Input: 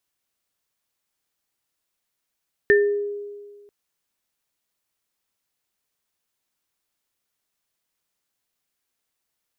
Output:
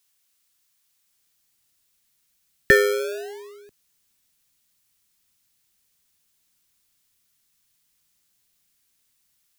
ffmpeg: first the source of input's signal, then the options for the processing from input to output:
-f lavfi -i "aevalsrc='0.251*pow(10,-3*t/1.65)*sin(2*PI*409*t)+0.224*pow(10,-3*t/0.36)*sin(2*PI*1790*t)':d=0.99:s=44100"
-filter_complex "[0:a]highshelf=f=2k:g=11.5,acrossover=split=240|580[a][b][c];[a]dynaudnorm=f=850:g=3:m=11dB[d];[b]acrusher=samples=32:mix=1:aa=0.000001:lfo=1:lforange=32:lforate=0.44[e];[d][e][c]amix=inputs=3:normalize=0"

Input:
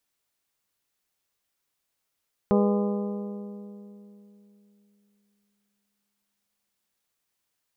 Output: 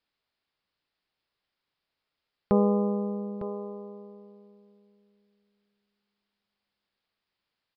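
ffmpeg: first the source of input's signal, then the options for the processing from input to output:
-f lavfi -i "aevalsrc='0.112*pow(10,-3*t/3.35)*sin(2*PI*204*t)+0.0794*pow(10,-3*t/2.721)*sin(2*PI*408*t)+0.0562*pow(10,-3*t/2.576)*sin(2*PI*489.6*t)+0.0398*pow(10,-3*t/2.409)*sin(2*PI*612*t)+0.0282*pow(10,-3*t/2.21)*sin(2*PI*816*t)+0.02*pow(10,-3*t/2.067)*sin(2*PI*1020*t)+0.0141*pow(10,-3*t/1.957)*sin(2*PI*1224*t)':d=4.83:s=44100"
-filter_complex "[0:a]asplit=2[a][b];[b]aecho=0:1:904:0.266[c];[a][c]amix=inputs=2:normalize=0,aresample=11025,aresample=44100"

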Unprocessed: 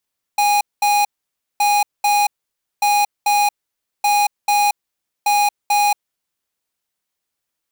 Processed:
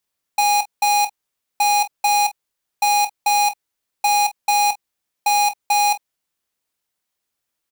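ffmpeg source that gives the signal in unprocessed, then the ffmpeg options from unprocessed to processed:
-f lavfi -i "aevalsrc='0.178*(2*lt(mod(823*t,1),0.5)-1)*clip(min(mod(mod(t,1.22),0.44),0.23-mod(mod(t,1.22),0.44))/0.005,0,1)*lt(mod(t,1.22),0.88)':d=6.1:s=44100"
-af "aecho=1:1:25|46:0.266|0.133"

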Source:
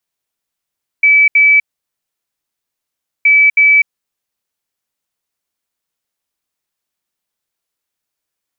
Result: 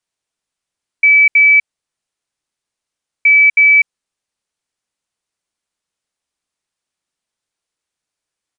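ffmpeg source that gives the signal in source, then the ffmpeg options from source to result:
-f lavfi -i "aevalsrc='0.562*sin(2*PI*2300*t)*clip(min(mod(mod(t,2.22),0.32),0.25-mod(mod(t,2.22),0.32))/0.005,0,1)*lt(mod(t,2.22),0.64)':d=4.44:s=44100"
-af "aresample=22050,aresample=44100"

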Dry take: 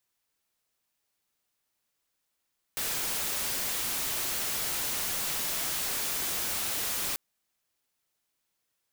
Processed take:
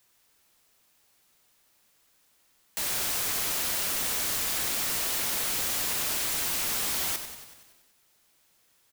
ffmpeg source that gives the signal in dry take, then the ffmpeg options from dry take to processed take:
-f lavfi -i "anoisesrc=c=white:a=0.0461:d=4.39:r=44100:seed=1"
-filter_complex "[0:a]aeval=exprs='0.0473*sin(PI/2*2.82*val(0)/0.0473)':c=same,asplit=9[a][b][c][d][e][f][g][h][i];[b]adelay=94,afreqshift=-46,volume=-9.5dB[j];[c]adelay=188,afreqshift=-92,volume=-13.7dB[k];[d]adelay=282,afreqshift=-138,volume=-17.8dB[l];[e]adelay=376,afreqshift=-184,volume=-22dB[m];[f]adelay=470,afreqshift=-230,volume=-26.1dB[n];[g]adelay=564,afreqshift=-276,volume=-30.3dB[o];[h]adelay=658,afreqshift=-322,volume=-34.4dB[p];[i]adelay=752,afreqshift=-368,volume=-38.6dB[q];[a][j][k][l][m][n][o][p][q]amix=inputs=9:normalize=0"

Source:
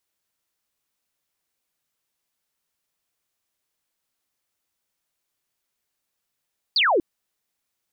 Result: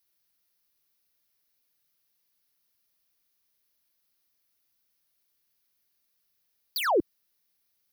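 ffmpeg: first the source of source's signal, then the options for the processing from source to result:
-f lavfi -i "aevalsrc='0.158*clip(t/0.002,0,1)*clip((0.24-t)/0.002,0,1)*sin(2*PI*4900*0.24/log(300/4900)*(exp(log(300/4900)*t/0.24)-1))':d=0.24:s=44100"
-filter_complex "[0:a]equalizer=f=820:w=0.8:g=-4.5,acrossover=split=100|1100[a][b][c];[c]volume=31.5dB,asoftclip=hard,volume=-31.5dB[d];[a][b][d]amix=inputs=3:normalize=0,aexciter=amount=1.5:drive=1.2:freq=4.3k"

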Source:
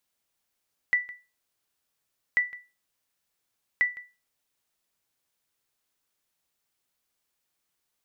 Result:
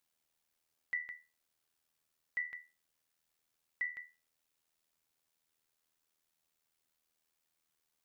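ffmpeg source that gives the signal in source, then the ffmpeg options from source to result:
-f lavfi -i "aevalsrc='0.178*(sin(2*PI*1970*mod(t,1.44))*exp(-6.91*mod(t,1.44)/0.28)+0.112*sin(2*PI*1970*max(mod(t,1.44)-0.16,0))*exp(-6.91*max(mod(t,1.44)-0.16,0)/0.28))':d=4.32:s=44100"
-af "alimiter=level_in=1.5dB:limit=-24dB:level=0:latency=1:release=207,volume=-1.5dB,tremolo=f=80:d=0.667"

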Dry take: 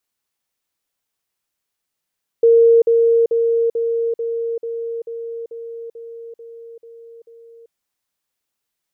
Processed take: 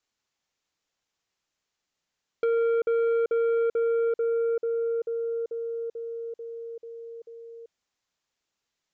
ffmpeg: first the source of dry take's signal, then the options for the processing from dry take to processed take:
-f lavfi -i "aevalsrc='pow(10,(-7.5-3*floor(t/0.44))/20)*sin(2*PI*462*t)*clip(min(mod(t,0.44),0.39-mod(t,0.44))/0.005,0,1)':d=5.28:s=44100"
-af "acompressor=threshold=-17dB:ratio=10,aresample=16000,asoftclip=type=tanh:threshold=-21.5dB,aresample=44100"

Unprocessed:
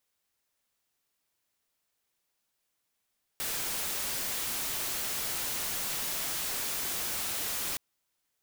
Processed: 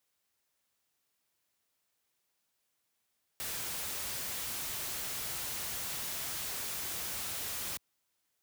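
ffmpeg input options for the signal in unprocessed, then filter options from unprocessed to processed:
-f lavfi -i "anoisesrc=c=white:a=0.0366:d=4.37:r=44100:seed=1"
-filter_complex "[0:a]acrossover=split=190[a][b];[b]asoftclip=type=tanh:threshold=-35.5dB[c];[a][c]amix=inputs=2:normalize=0,highpass=47"

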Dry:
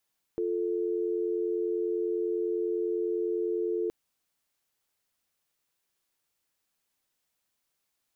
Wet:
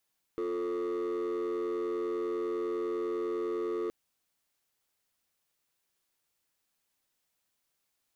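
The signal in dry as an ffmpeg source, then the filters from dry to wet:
-f lavfi -i "aevalsrc='0.0335*(sin(2*PI*350*t)+sin(2*PI*440*t))':d=3.52:s=44100"
-af "asoftclip=type=hard:threshold=-30.5dB"

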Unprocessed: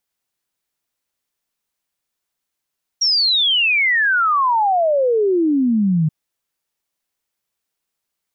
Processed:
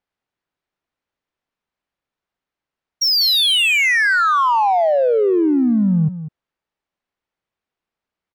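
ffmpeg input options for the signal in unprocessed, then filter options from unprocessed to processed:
-f lavfi -i "aevalsrc='0.224*clip(min(t,3.08-t)/0.01,0,1)*sin(2*PI*5700*3.08/log(150/5700)*(exp(log(150/5700)*t/3.08)-1))':d=3.08:s=44100"
-filter_complex "[0:a]asplit=2[a][b];[b]volume=25dB,asoftclip=hard,volume=-25dB,volume=-10.5dB[c];[a][c]amix=inputs=2:normalize=0,aecho=1:1:196:0.237,adynamicsmooth=sensitivity=1.5:basefreq=2.8k"

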